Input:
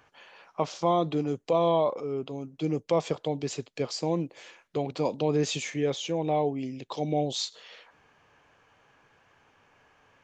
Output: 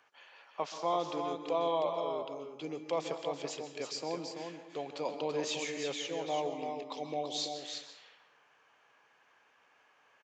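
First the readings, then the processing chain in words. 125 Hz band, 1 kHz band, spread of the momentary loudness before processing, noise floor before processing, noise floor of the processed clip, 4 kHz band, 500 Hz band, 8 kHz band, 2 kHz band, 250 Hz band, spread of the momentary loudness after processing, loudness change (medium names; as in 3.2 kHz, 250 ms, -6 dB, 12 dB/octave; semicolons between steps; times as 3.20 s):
-18.0 dB, -5.0 dB, 10 LU, -66 dBFS, -68 dBFS, -3.5 dB, -7.0 dB, -4.5 dB, -3.0 dB, -11.0 dB, 10 LU, -7.0 dB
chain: frequency weighting A; on a send: delay 334 ms -6 dB; on the sum: plate-style reverb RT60 0.81 s, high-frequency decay 0.55×, pre-delay 115 ms, DRR 9.5 dB; trim -5.5 dB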